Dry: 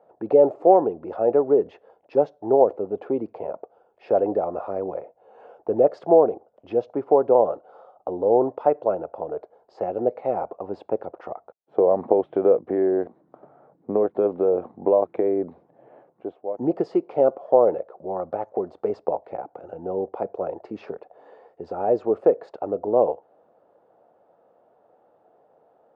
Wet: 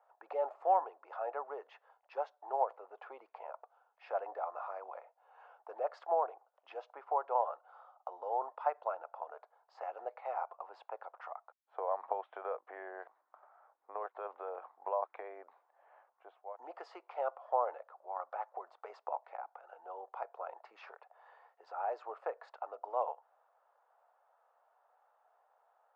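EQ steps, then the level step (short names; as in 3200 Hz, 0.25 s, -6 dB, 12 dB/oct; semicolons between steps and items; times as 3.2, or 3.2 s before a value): HPF 1000 Hz 24 dB/oct; high shelf 2000 Hz -12 dB; +2.0 dB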